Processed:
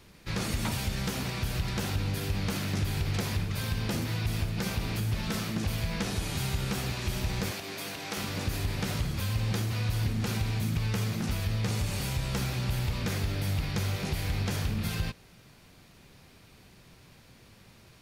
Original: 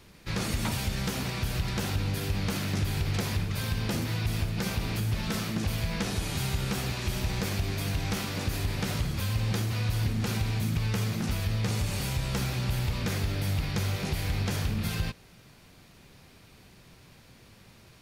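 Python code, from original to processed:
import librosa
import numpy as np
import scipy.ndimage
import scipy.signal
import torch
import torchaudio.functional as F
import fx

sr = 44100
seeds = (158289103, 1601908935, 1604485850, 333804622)

y = fx.highpass(x, sr, hz=310.0, slope=12, at=(7.51, 8.17))
y = y * librosa.db_to_amplitude(-1.0)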